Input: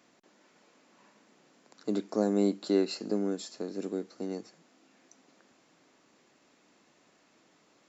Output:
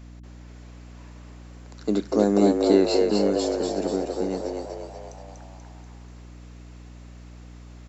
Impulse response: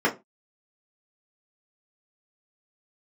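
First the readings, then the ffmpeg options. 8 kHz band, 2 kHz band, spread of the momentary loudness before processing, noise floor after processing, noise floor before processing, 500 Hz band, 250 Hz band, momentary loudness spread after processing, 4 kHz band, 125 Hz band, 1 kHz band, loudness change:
n/a, +9.5 dB, 11 LU, -44 dBFS, -66 dBFS, +10.5 dB, +8.0 dB, 19 LU, +9.0 dB, +8.5 dB, +12.5 dB, +9.0 dB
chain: -filter_complex "[0:a]asplit=9[a][b][c][d][e][f][g][h][i];[b]adelay=242,afreqshift=75,volume=-3.5dB[j];[c]adelay=484,afreqshift=150,volume=-8.5dB[k];[d]adelay=726,afreqshift=225,volume=-13.6dB[l];[e]adelay=968,afreqshift=300,volume=-18.6dB[m];[f]adelay=1210,afreqshift=375,volume=-23.6dB[n];[g]adelay=1452,afreqshift=450,volume=-28.7dB[o];[h]adelay=1694,afreqshift=525,volume=-33.7dB[p];[i]adelay=1936,afreqshift=600,volume=-38.8dB[q];[a][j][k][l][m][n][o][p][q]amix=inputs=9:normalize=0,aeval=exprs='val(0)+0.00355*(sin(2*PI*60*n/s)+sin(2*PI*2*60*n/s)/2+sin(2*PI*3*60*n/s)/3+sin(2*PI*4*60*n/s)/4+sin(2*PI*5*60*n/s)/5)':c=same,volume=7dB"

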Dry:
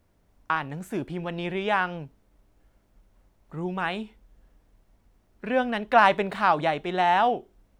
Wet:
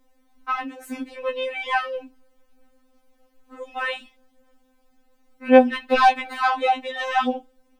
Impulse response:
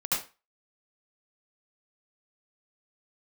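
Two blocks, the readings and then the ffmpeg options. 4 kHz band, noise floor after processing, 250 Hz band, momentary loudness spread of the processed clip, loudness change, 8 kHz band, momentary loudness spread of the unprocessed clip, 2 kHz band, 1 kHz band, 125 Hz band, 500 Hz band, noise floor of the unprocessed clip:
+3.5 dB, -64 dBFS, +5.0 dB, 19 LU, +3.5 dB, n/a, 15 LU, +1.5 dB, +2.0 dB, under -20 dB, +5.0 dB, -66 dBFS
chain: -af "aeval=exprs='0.596*sin(PI/2*1.41*val(0)/0.596)':c=same,afftfilt=real='re*3.46*eq(mod(b,12),0)':imag='im*3.46*eq(mod(b,12),0)':win_size=2048:overlap=0.75,volume=-1dB"

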